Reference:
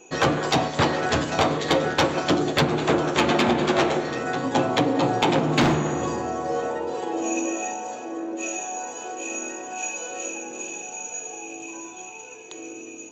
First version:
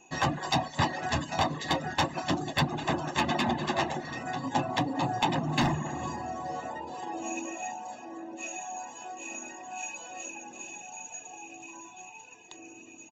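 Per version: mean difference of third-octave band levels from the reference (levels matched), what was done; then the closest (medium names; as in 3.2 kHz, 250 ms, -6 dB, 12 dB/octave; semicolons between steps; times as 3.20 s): 2.5 dB: reverb removal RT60 0.54 s; comb 1.1 ms, depth 71%; trim -7.5 dB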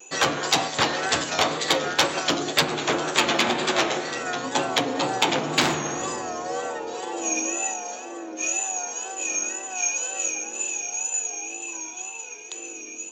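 5.0 dB: vibrato 2 Hz 66 cents; tilt EQ +3 dB/octave; trim -1 dB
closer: first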